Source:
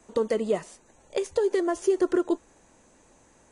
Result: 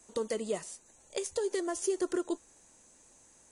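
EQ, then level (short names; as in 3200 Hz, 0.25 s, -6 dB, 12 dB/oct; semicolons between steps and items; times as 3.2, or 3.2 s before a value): high shelf 5000 Hz +10 dB; bell 8900 Hz +6 dB 2.4 oct; -8.5 dB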